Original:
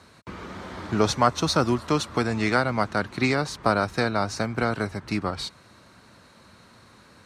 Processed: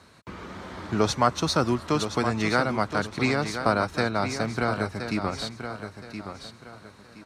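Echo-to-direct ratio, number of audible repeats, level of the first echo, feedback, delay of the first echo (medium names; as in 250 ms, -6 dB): -8.5 dB, 3, -9.0 dB, 30%, 1021 ms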